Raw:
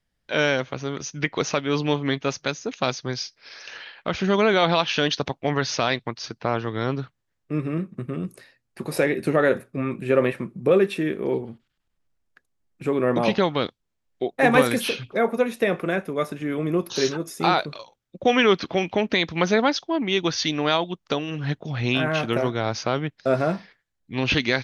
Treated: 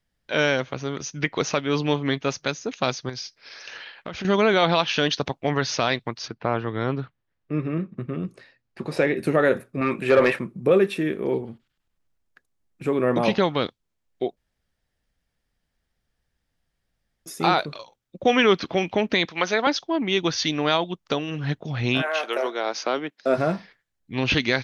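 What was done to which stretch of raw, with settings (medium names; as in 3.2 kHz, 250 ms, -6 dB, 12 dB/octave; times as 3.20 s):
3.09–4.25 s: compression, threshold -29 dBFS
6.27–9.16 s: low-pass 2.8 kHz -> 5.7 kHz
9.81–10.39 s: overdrive pedal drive 16 dB, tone 4.5 kHz, clips at -7.5 dBFS
14.37–17.26 s: room tone
19.25–19.67 s: frequency weighting A
22.01–23.37 s: high-pass 530 Hz -> 190 Hz 24 dB/octave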